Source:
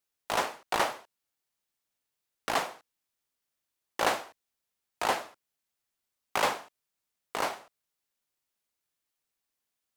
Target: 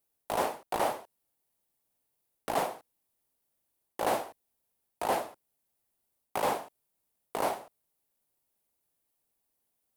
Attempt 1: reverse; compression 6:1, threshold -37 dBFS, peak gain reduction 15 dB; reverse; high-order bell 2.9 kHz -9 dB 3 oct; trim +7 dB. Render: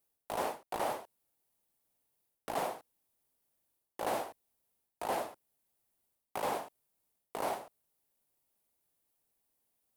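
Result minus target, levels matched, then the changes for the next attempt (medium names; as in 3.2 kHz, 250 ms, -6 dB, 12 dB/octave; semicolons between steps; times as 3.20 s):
compression: peak gain reduction +6 dB
change: compression 6:1, threshold -30 dBFS, peak gain reduction 9 dB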